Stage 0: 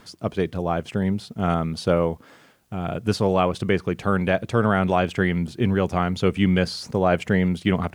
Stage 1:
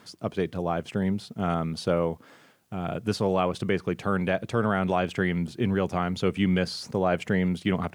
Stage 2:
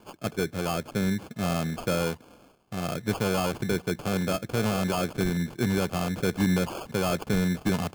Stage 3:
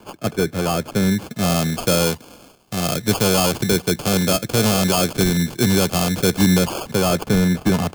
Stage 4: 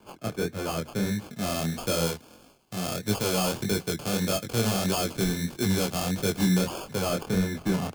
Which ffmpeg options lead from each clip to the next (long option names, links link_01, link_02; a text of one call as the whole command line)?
ffmpeg -i in.wav -filter_complex "[0:a]highpass=95,asplit=2[link_01][link_02];[link_02]alimiter=limit=-13dB:level=0:latency=1:release=115,volume=-3dB[link_03];[link_01][link_03]amix=inputs=2:normalize=0,volume=-7.5dB" out.wav
ffmpeg -i in.wav -filter_complex "[0:a]acrossover=split=310|3400[link_01][link_02][link_03];[link_02]asoftclip=type=hard:threshold=-25.5dB[link_04];[link_01][link_04][link_03]amix=inputs=3:normalize=0,acrusher=samples=23:mix=1:aa=0.000001" out.wav
ffmpeg -i in.wav -filter_complex "[0:a]acrossover=split=160|1300|3100[link_01][link_02][link_03][link_04];[link_03]asoftclip=type=tanh:threshold=-39.5dB[link_05];[link_04]dynaudnorm=framelen=210:gausssize=13:maxgain=8dB[link_06];[link_01][link_02][link_05][link_06]amix=inputs=4:normalize=0,volume=8.5dB" out.wav
ffmpeg -i in.wav -af "flanger=delay=19.5:depth=7.5:speed=1.6,volume=-6dB" out.wav